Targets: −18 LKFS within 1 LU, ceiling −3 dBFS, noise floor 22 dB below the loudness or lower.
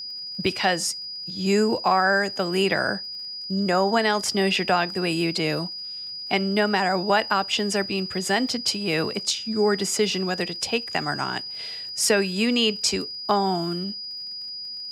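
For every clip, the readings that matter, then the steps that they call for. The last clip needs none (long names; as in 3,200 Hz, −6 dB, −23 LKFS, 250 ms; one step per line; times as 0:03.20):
crackle rate 48 per second; interfering tone 4,900 Hz; level of the tone −32 dBFS; integrated loudness −23.5 LKFS; sample peak −7.5 dBFS; target loudness −18.0 LKFS
→ click removal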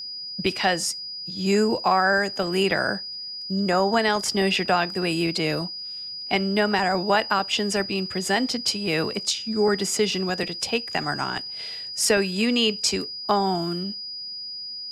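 crackle rate 0.067 per second; interfering tone 4,900 Hz; level of the tone −32 dBFS
→ notch filter 4,900 Hz, Q 30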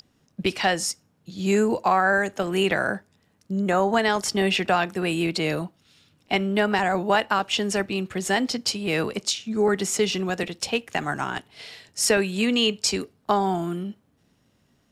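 interfering tone none found; integrated loudness −24.0 LKFS; sample peak −8.0 dBFS; target loudness −18.0 LKFS
→ level +6 dB
brickwall limiter −3 dBFS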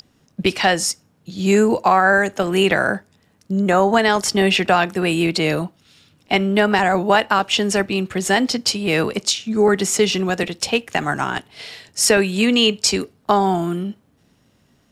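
integrated loudness −18.0 LKFS; sample peak −3.0 dBFS; background noise floor −60 dBFS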